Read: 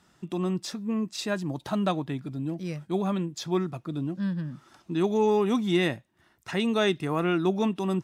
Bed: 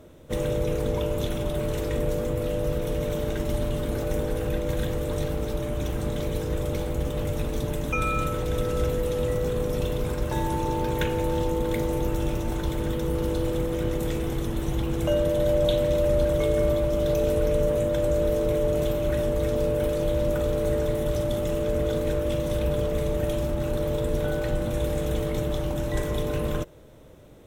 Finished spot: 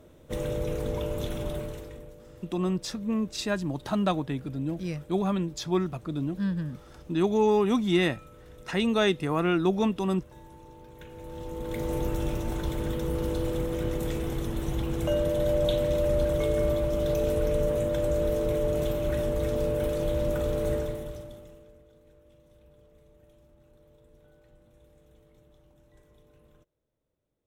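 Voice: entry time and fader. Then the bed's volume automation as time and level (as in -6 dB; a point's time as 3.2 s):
2.20 s, +0.5 dB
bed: 1.53 s -4.5 dB
2.16 s -23 dB
10.93 s -23 dB
11.93 s -3 dB
20.74 s -3 dB
21.86 s -32.5 dB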